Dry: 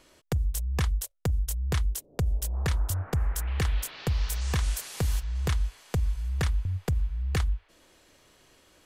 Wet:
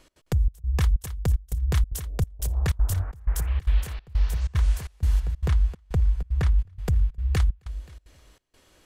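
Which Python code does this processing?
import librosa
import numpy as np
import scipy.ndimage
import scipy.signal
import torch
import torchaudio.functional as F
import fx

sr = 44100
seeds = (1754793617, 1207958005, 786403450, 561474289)

y = fx.high_shelf(x, sr, hz=3200.0, db=-9.5, at=(3.81, 6.59))
y = fx.echo_feedback(y, sr, ms=264, feedback_pct=27, wet_db=-13.0)
y = fx.step_gate(y, sr, bpm=188, pattern='x.xxxx..xxx', floor_db=-24.0, edge_ms=4.5)
y = fx.low_shelf(y, sr, hz=89.0, db=8.0)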